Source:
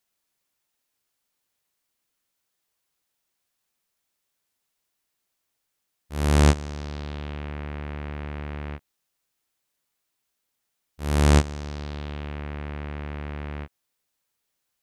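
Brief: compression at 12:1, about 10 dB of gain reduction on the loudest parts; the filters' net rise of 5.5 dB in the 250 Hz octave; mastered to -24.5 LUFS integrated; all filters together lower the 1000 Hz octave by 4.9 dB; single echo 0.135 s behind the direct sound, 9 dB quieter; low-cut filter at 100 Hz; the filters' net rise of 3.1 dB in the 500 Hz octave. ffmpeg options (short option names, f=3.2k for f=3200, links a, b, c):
-af "highpass=100,equalizer=f=250:t=o:g=7,equalizer=f=500:t=o:g=3.5,equalizer=f=1k:t=o:g=-8.5,acompressor=threshold=-20dB:ratio=12,aecho=1:1:135:0.355,volume=8dB"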